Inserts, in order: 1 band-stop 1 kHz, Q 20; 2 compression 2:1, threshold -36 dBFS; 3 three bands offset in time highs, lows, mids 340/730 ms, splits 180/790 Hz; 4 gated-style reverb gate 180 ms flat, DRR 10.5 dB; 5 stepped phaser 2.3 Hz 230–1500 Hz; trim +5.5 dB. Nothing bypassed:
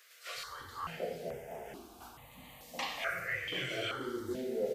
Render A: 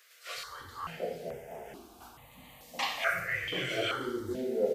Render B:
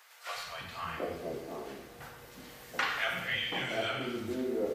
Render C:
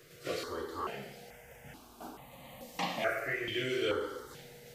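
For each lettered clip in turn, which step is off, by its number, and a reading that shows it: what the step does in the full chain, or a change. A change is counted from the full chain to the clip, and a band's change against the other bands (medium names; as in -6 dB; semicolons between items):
2, momentary loudness spread change +4 LU; 5, 8 kHz band -3.0 dB; 3, momentary loudness spread change +2 LU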